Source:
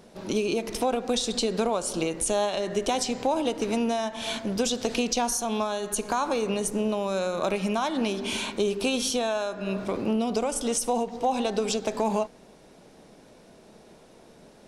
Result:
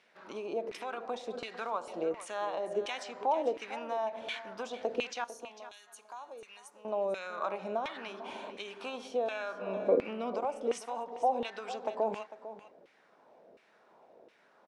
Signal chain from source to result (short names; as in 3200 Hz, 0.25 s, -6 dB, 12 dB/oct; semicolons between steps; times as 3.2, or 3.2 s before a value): 5.24–6.85 pre-emphasis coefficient 0.9; 9.31–10.36 small resonant body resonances 260/480/2300 Hz, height 11 dB, ringing for 25 ms; LFO band-pass saw down 1.4 Hz 460–2400 Hz; echo 0.449 s -14 dB